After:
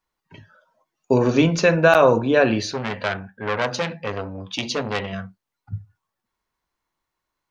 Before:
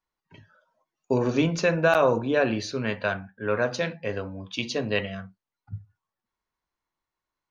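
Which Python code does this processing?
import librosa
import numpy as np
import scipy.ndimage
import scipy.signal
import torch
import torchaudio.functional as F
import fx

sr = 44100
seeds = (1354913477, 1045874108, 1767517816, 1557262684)

y = fx.transformer_sat(x, sr, knee_hz=2000.0, at=(2.66, 5.13))
y = F.gain(torch.from_numpy(y), 6.0).numpy()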